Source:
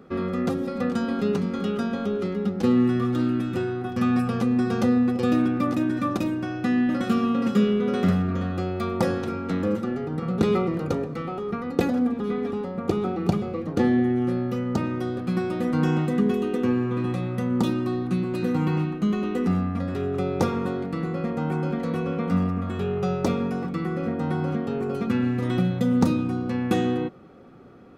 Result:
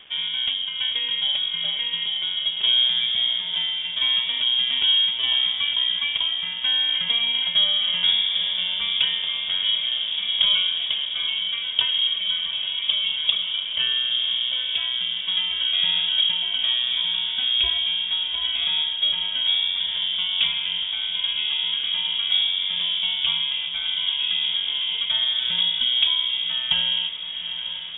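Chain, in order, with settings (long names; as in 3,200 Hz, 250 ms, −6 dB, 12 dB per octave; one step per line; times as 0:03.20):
0:13.60–0:14.11: high-pass filter 280 Hz 12 dB per octave
0:17.28–0:17.78: high-shelf EQ 2,600 Hz +6.5 dB
bit reduction 8 bits
on a send: feedback delay with all-pass diffusion 843 ms, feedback 79%, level −11 dB
on the sum: voice inversion scrambler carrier 3,500 Hz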